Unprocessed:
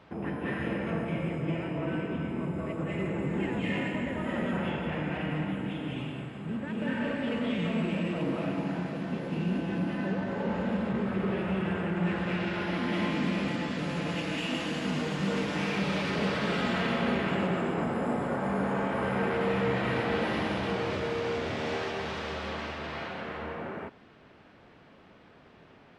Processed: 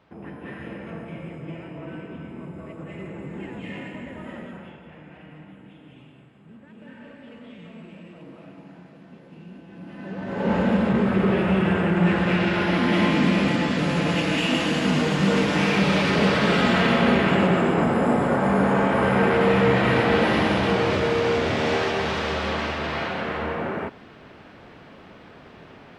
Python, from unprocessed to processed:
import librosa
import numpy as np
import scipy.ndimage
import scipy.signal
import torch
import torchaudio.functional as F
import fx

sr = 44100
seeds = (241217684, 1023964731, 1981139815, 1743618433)

y = fx.gain(x, sr, db=fx.line((4.28, -4.5), (4.8, -13.0), (9.7, -13.0), (10.13, -3.0), (10.52, 9.5)))